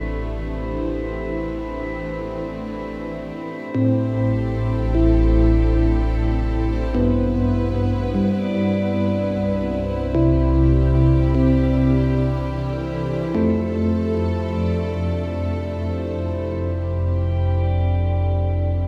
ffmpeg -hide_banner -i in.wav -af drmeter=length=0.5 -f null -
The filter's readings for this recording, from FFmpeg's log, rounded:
Channel 1: DR: 6.5
Overall DR: 6.5